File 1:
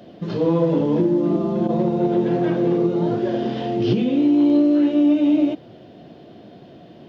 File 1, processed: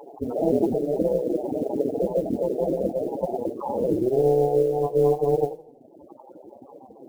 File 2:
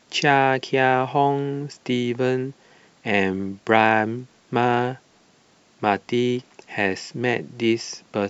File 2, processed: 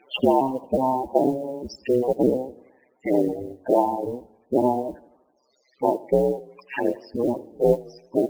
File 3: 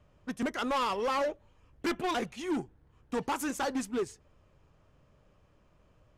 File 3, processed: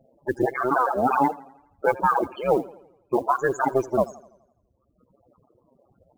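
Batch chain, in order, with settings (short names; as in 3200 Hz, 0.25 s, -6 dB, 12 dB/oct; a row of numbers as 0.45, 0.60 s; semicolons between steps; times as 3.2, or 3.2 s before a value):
cycle switcher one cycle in 2, inverted; reverb removal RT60 1.7 s; HPF 330 Hz 6 dB/oct; treble ducked by the level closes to 620 Hz, closed at -22 dBFS; high shelf 7500 Hz -5.5 dB; in parallel at -1.5 dB: compressor, threshold -33 dBFS; on the sum: loudest bins only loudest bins 8; modulation noise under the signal 33 dB; AM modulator 130 Hz, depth 45%; warbling echo 84 ms, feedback 52%, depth 97 cents, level -20 dB; match loudness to -24 LUFS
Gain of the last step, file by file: +5.0, +9.0, +13.5 dB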